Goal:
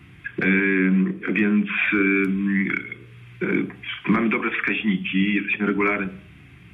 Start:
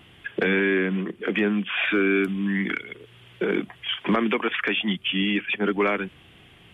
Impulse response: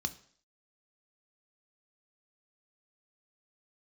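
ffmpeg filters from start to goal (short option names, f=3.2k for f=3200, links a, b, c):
-filter_complex "[0:a]asplit=2[a][b];[1:a]atrim=start_sample=2205,lowpass=3k[c];[b][c]afir=irnorm=-1:irlink=0,volume=1.5dB[d];[a][d]amix=inputs=2:normalize=0,volume=-2dB"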